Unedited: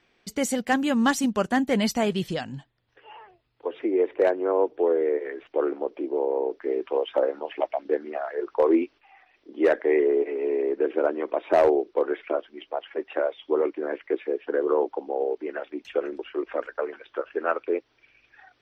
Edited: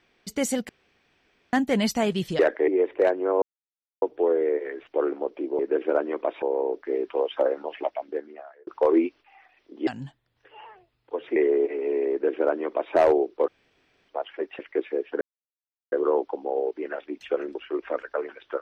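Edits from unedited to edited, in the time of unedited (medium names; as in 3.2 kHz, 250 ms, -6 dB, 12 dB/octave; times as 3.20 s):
0.69–1.53 s: room tone
2.39–3.88 s: swap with 9.64–9.93 s
4.62 s: insert silence 0.60 s
7.45–8.44 s: fade out
10.68–11.51 s: copy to 6.19 s
12.05–12.66 s: room tone
13.16–13.94 s: delete
14.56 s: insert silence 0.71 s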